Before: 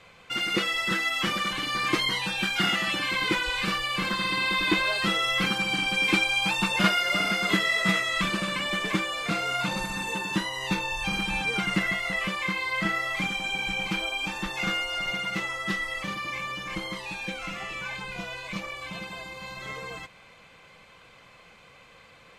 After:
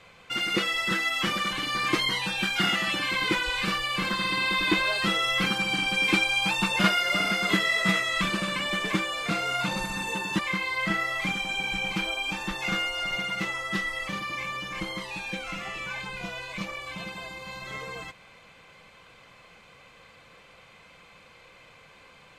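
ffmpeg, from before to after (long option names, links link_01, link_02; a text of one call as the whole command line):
ffmpeg -i in.wav -filter_complex "[0:a]asplit=2[link_01][link_02];[link_01]atrim=end=10.392[link_03];[link_02]atrim=start=12.338[link_04];[link_03][link_04]acrossfade=duration=0.004:curve1=hsin:curve2=hsin" out.wav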